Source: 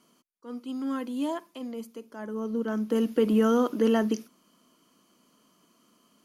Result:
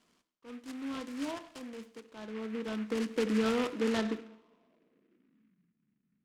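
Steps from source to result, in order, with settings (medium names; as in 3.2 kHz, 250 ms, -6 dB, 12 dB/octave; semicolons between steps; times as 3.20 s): two-slope reverb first 0.75 s, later 2.4 s, from -26 dB, DRR 9.5 dB; low-pass sweep 3.4 kHz -> 150 Hz, 3.66–5.72 s; delay time shaken by noise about 1.7 kHz, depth 0.084 ms; trim -8 dB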